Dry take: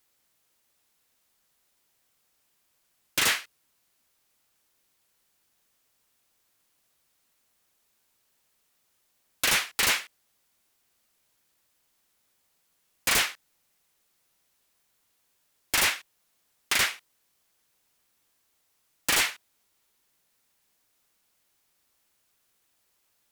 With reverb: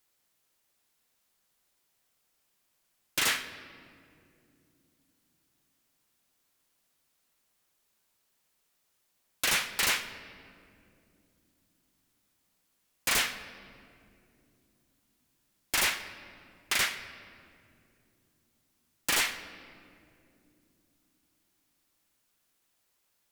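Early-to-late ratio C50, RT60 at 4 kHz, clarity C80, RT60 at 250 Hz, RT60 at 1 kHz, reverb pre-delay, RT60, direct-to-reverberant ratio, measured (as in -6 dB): 11.5 dB, 1.4 s, 12.5 dB, 4.7 s, 2.1 s, 3 ms, 2.7 s, 10.0 dB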